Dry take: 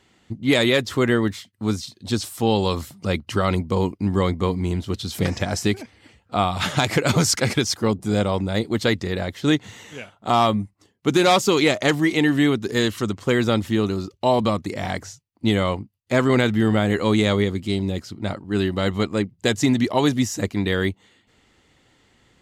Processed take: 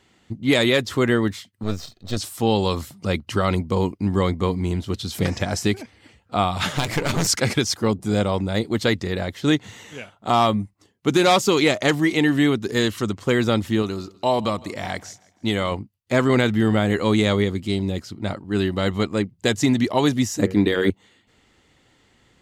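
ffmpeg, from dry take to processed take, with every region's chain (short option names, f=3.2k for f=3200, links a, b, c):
-filter_complex "[0:a]asettb=1/sr,asplit=3[a][b][c];[a]atrim=end=1.634[d];[b]atrim=start=1.63:end=2.17,asetpts=PTS-STARTPTS,afade=t=in:d=0.004:c=qsin,afade=t=out:st=0.536:d=0.004:c=qsin,aeval=exprs='if(lt(val(0),0),0.251*val(0),val(0))':c=same,equalizer=f=9.9k:w=3.1:g=-13,aecho=1:1:1.6:0.33,atrim=end_sample=23814[e];[c]atrim=start=2.166[f];[d][e]acrossfade=d=0.004:c1=hsin:c2=qsin[g];[g][f]acrossfade=d=0.004:c1=qsin:c2=hsin,asettb=1/sr,asplit=3[h][i][j];[h]atrim=end=6.704[k];[i]atrim=start=6.7:end=7.27,asetpts=PTS-STARTPTS,afade=t=in:d=0.004:c=qsin,afade=t=out:st=0.566:d=0.004:c=qsin,bandreject=f=60:t=h:w=6,bandreject=f=120:t=h:w=6,bandreject=f=180:t=h:w=6,bandreject=f=240:t=h:w=6,bandreject=f=300:t=h:w=6,bandreject=f=360:t=h:w=6,bandreject=f=420:t=h:w=6,bandreject=f=480:t=h:w=6,bandreject=f=540:t=h:w=6,bandreject=f=600:t=h:w=6,aeval=exprs='clip(val(0),-1,0.0376)':c=same[l];[j]atrim=start=7.266[m];[k][l]acrossfade=d=0.004:c1=hsin:c2=qsin[n];[n][m]acrossfade=d=0.004:c1=qsin:c2=hsin,asettb=1/sr,asplit=3[o][p][q];[o]atrim=end=13.824[r];[p]atrim=start=13.82:end=15.72,asetpts=PTS-STARTPTS,afade=t=in:d=0.004:c=qsin,afade=t=out:st=1.896:d=0.004:c=qsin,lowshelf=f=440:g=-5,aecho=1:1:161|322|483:0.0708|0.0304|0.0131,atrim=end_sample=83790[s];[q]atrim=start=15.716[t];[r][s]acrossfade=d=0.004:c1=hsin:c2=qsin[u];[u][t]acrossfade=d=0.004:c1=qsin:c2=hsin,asettb=1/sr,asplit=3[v][w][x];[v]atrim=end=20.394[y];[w]atrim=start=20.39:end=20.9,asetpts=PTS-STARTPTS,afade=t=in:d=0.004:c=qsin,afade=t=out:st=0.506:d=0.004:c=qsin,equalizer=f=300:w=0.88:g=8.5,bandreject=f=93.53:t=h:w=4,bandreject=f=187.06:t=h:w=4,bandreject=f=280.59:t=h:w=4,bandreject=f=374.12:t=h:w=4,bandreject=f=467.65:t=h:w=4,bandreject=f=561.18:t=h:w=4,bandreject=f=654.71:t=h:w=4,bandreject=f=748.24:t=h:w=4,bandreject=f=841.77:t=h:w=4,bandreject=f=935.3:t=h:w=4,bandreject=f=1.02883k:t=h:w=4,bandreject=f=1.12236k:t=h:w=4,bandreject=f=1.21589k:t=h:w=4,bandreject=f=1.30942k:t=h:w=4,bandreject=f=1.40295k:t=h:w=4,bandreject=f=1.49648k:t=h:w=4,bandreject=f=1.59001k:t=h:w=4,bandreject=f=1.68354k:t=h:w=4,bandreject=f=1.77707k:t=h:w=4,bandreject=f=1.8706k:t=h:w=4,bandreject=f=1.96413k:t=h:w=4,bandreject=f=2.05766k:t=h:w=4,bandreject=f=2.15119k:t=h:w=4,bandreject=f=2.24472k:t=h:w=4,bandreject=f=2.33825k:t=h:w=4,bandreject=f=2.43178k:t=h:w=4,bandreject=f=2.52531k:t=h:w=4,bandreject=f=2.61884k:t=h:w=4,bandreject=f=2.71237k:t=h:w=4,bandreject=f=2.8059k:t=h:w=4,bandreject=f=2.89943k:t=h:w=4,bandreject=f=2.99296k:t=h:w=4,bandreject=f=3.08649k:t=h:w=4[z];[x]atrim=start=20.896[aa];[y][z]acrossfade=d=0.004:c1=hsin:c2=qsin[ab];[ab][aa]acrossfade=d=0.004:c1=qsin:c2=hsin"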